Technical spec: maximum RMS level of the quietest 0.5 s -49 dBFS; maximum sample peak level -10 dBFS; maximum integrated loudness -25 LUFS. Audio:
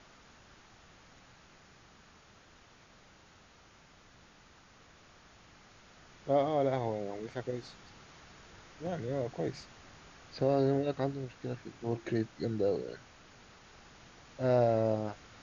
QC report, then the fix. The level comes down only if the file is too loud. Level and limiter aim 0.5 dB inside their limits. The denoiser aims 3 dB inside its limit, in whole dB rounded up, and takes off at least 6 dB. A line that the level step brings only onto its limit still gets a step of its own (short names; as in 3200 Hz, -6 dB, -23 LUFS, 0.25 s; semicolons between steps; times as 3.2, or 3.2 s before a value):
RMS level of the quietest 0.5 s -60 dBFS: OK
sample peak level -16.5 dBFS: OK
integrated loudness -33.5 LUFS: OK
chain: none